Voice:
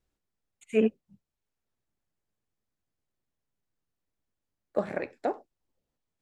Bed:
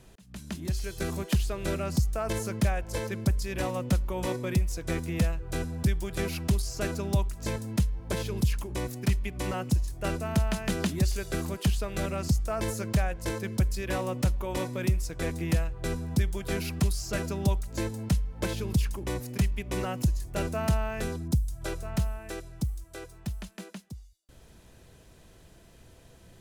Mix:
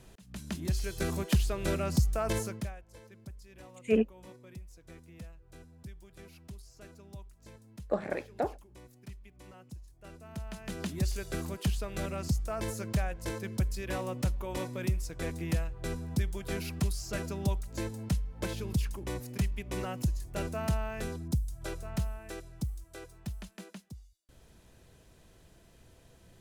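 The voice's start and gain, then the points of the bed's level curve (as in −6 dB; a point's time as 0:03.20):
3.15 s, −2.0 dB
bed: 0:02.39 −0.5 dB
0:02.85 −21 dB
0:10.02 −21 dB
0:11.06 −4.5 dB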